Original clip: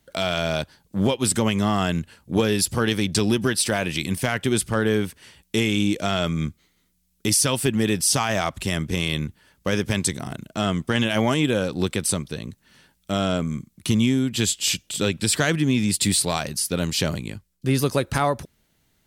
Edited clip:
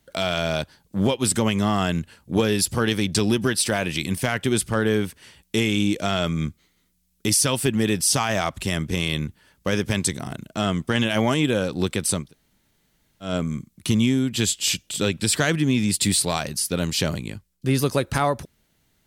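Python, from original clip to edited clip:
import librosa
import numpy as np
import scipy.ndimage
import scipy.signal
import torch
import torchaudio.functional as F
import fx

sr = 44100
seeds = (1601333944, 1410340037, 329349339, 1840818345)

y = fx.edit(x, sr, fx.room_tone_fill(start_s=12.26, length_s=1.02, crossfade_s=0.16), tone=tone)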